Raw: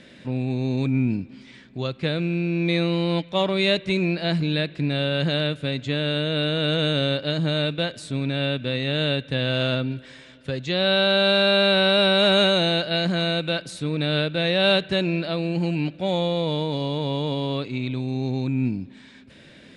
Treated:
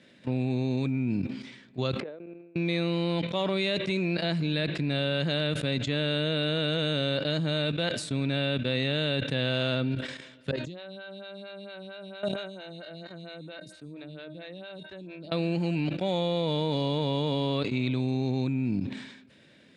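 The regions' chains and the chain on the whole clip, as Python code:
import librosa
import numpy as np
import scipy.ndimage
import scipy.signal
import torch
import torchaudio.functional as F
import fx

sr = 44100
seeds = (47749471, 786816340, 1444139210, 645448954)

y = fx.chain(x, sr, fx.ladder_bandpass(hz=590.0, resonance_pct=25),
    fx.over_compress(threshold_db=-45.0, ratio=-0.5), at=(2.0, 2.56))
y = fx.chain(y, sr, fx.low_shelf(hz=280.0, db=8.0),
    fx.comb_fb(f0_hz=310.0, decay_s=0.8, harmonics='all', damping=0.0, mix_pct=80),
    fx.stagger_phaser(hz=4.4), at=(10.51, 15.32))
y = fx.level_steps(y, sr, step_db=15)
y = scipy.signal.sosfilt(scipy.signal.butter(2, 92.0, 'highpass', fs=sr, output='sos'), y)
y = fx.sustainer(y, sr, db_per_s=61.0)
y = y * librosa.db_to_amplitude(2.5)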